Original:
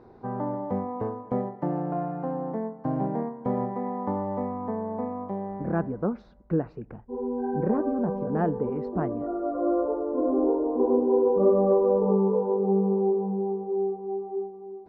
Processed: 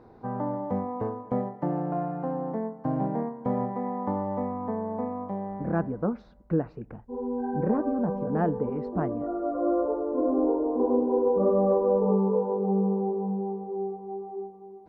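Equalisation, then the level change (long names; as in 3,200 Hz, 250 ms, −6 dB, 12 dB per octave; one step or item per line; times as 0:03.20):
notch filter 380 Hz, Q 12
0.0 dB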